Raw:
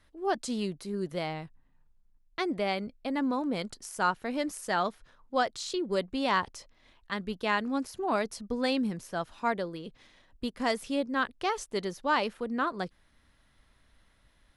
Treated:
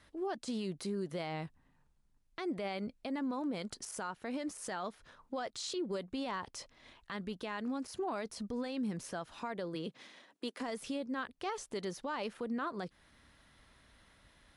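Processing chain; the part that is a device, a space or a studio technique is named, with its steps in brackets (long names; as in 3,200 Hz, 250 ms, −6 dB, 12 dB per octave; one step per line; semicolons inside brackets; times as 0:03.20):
0:09.74–0:10.60: high-pass filter 110 Hz → 320 Hz 24 dB per octave
podcast mastering chain (high-pass filter 77 Hz 6 dB per octave; de-essing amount 95%; downward compressor 2.5 to 1, threshold −39 dBFS, peak gain reduction 11.5 dB; brickwall limiter −34 dBFS, peak gain reduction 8.5 dB; level +4.5 dB; MP3 96 kbit/s 24,000 Hz)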